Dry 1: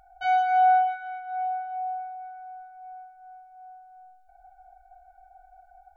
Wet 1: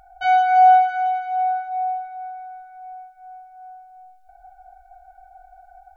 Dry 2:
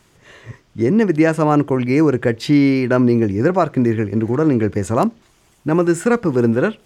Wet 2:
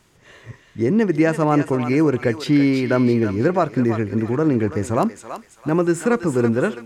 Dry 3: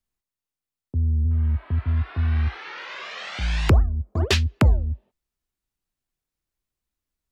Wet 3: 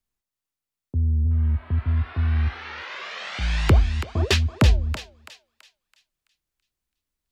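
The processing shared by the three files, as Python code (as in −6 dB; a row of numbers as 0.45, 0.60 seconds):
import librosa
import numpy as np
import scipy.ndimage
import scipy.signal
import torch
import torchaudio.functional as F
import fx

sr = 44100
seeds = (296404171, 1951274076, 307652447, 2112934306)

y = fx.echo_thinned(x, sr, ms=331, feedback_pct=41, hz=1200.0, wet_db=-6.0)
y = y * 10.0 ** (-6 / 20.0) / np.max(np.abs(y))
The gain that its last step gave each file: +6.0, −3.0, 0.0 decibels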